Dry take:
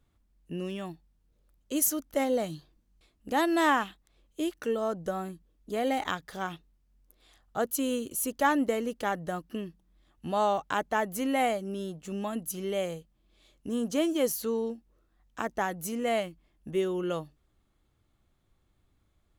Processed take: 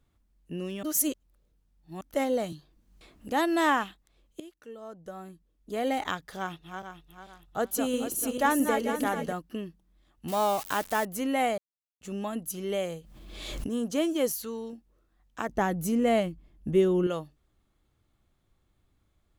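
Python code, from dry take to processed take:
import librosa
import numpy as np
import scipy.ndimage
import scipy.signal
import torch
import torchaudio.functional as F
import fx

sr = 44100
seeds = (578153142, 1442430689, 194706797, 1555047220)

y = fx.band_squash(x, sr, depth_pct=100, at=(2.52, 3.29))
y = fx.reverse_delay_fb(y, sr, ms=222, feedback_pct=60, wet_db=-5.5, at=(6.38, 9.33))
y = fx.crossing_spikes(y, sr, level_db=-26.0, at=(10.28, 11.05))
y = fx.pre_swell(y, sr, db_per_s=36.0, at=(12.68, 13.67), fade=0.02)
y = fx.peak_eq(y, sr, hz=420.0, db=-7.5, octaves=2.4, at=(14.32, 14.73))
y = fx.low_shelf(y, sr, hz=390.0, db=11.5, at=(15.49, 17.07))
y = fx.edit(y, sr, fx.reverse_span(start_s=0.83, length_s=1.18),
    fx.fade_in_from(start_s=4.4, length_s=1.45, curve='qua', floor_db=-17.0),
    fx.silence(start_s=11.58, length_s=0.43), tone=tone)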